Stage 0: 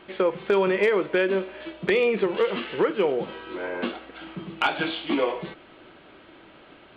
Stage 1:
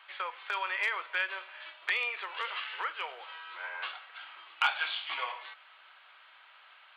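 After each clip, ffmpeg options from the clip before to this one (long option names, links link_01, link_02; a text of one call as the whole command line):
ffmpeg -i in.wav -af "highpass=frequency=960:width=0.5412,highpass=frequency=960:width=1.3066,volume=-2.5dB" out.wav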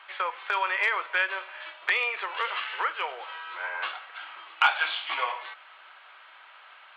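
ffmpeg -i in.wav -af "highshelf=frequency=3000:gain=-9.5,volume=8.5dB" out.wav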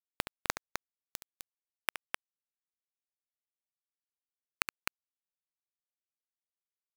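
ffmpeg -i in.wav -filter_complex "[0:a]acompressor=threshold=-35dB:ratio=6,acrusher=bits=3:mix=0:aa=0.000001,asplit=2[link_01][link_02];[link_02]aecho=0:1:69.97|256.6:0.282|0.562[link_03];[link_01][link_03]amix=inputs=2:normalize=0,volume=6.5dB" out.wav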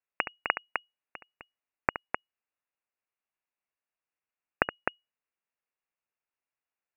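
ffmpeg -i in.wav -af "lowpass=frequency=2500:width_type=q:width=0.5098,lowpass=frequency=2500:width_type=q:width=0.6013,lowpass=frequency=2500:width_type=q:width=0.9,lowpass=frequency=2500:width_type=q:width=2.563,afreqshift=-2900,volume=8dB" out.wav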